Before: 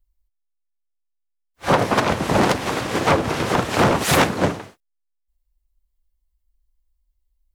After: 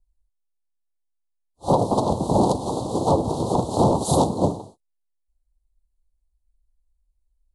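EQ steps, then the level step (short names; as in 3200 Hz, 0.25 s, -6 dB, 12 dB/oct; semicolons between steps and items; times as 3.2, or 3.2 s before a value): elliptic band-stop 920–4100 Hz, stop band 70 dB; steep low-pass 11000 Hz 96 dB/oct; bell 5300 Hz -9.5 dB 0.67 oct; 0.0 dB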